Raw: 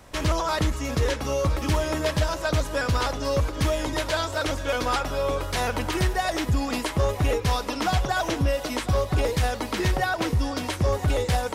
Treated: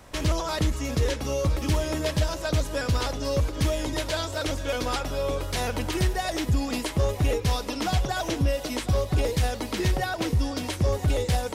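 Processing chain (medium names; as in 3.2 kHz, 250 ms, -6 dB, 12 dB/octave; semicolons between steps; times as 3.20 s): dynamic bell 1.2 kHz, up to -6 dB, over -39 dBFS, Q 0.78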